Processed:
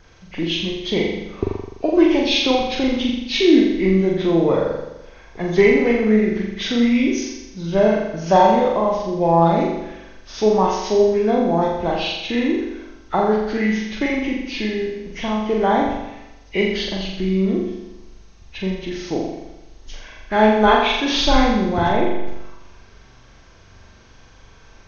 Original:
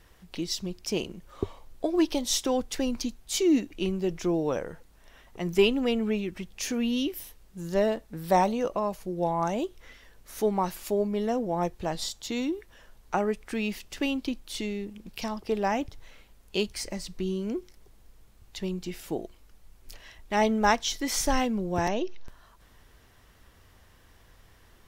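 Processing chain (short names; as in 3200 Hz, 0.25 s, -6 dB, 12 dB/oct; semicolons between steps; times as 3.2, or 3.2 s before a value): nonlinear frequency compression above 1200 Hz 1.5:1; flutter echo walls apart 7.2 m, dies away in 0.96 s; gain +7 dB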